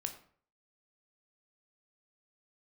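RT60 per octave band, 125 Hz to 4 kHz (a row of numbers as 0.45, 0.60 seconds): 0.60, 0.50, 0.50, 0.50, 0.45, 0.35 seconds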